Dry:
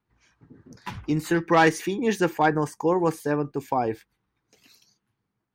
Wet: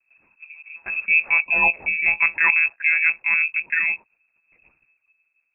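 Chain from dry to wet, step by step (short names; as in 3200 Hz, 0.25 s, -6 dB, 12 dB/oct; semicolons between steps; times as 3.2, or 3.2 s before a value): bell 120 Hz +13 dB 1.2 oct; monotone LPC vocoder at 8 kHz 160 Hz; spectral gain 1.47–1.74, 290–1500 Hz -23 dB; inverted band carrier 2600 Hz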